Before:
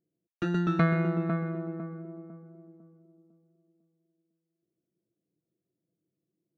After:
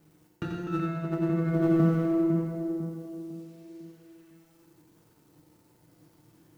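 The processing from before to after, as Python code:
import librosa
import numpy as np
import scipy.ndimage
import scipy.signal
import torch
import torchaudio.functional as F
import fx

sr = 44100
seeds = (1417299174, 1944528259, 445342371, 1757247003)

y = fx.law_mismatch(x, sr, coded='mu')
y = fx.peak_eq(y, sr, hz=110.0, db=8.5, octaves=1.8)
y = fx.over_compress(y, sr, threshold_db=-30.0, ratio=-1.0)
y = y + 10.0 ** (-5.5 / 20.0) * np.pad(y, (int(88 * sr / 1000.0), 0))[:len(y)]
y = fx.rev_fdn(y, sr, rt60_s=1.5, lf_ratio=0.75, hf_ratio=0.95, size_ms=20.0, drr_db=0.0)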